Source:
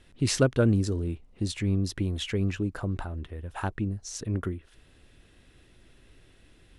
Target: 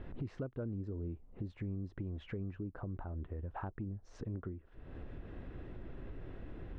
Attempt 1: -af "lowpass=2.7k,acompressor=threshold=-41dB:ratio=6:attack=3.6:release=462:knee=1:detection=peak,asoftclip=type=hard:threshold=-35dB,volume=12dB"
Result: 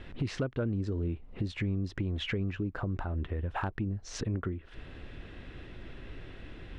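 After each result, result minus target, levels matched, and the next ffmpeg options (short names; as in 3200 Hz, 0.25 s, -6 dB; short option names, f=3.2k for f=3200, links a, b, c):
compressor: peak gain reduction -8 dB; 2000 Hz band +5.0 dB
-af "lowpass=2.7k,acompressor=threshold=-51dB:ratio=6:attack=3.6:release=462:knee=1:detection=peak,asoftclip=type=hard:threshold=-35dB,volume=12dB"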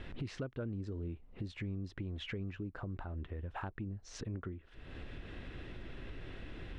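2000 Hz band +7.0 dB
-af "lowpass=1.1k,acompressor=threshold=-51dB:ratio=6:attack=3.6:release=462:knee=1:detection=peak,asoftclip=type=hard:threshold=-35dB,volume=12dB"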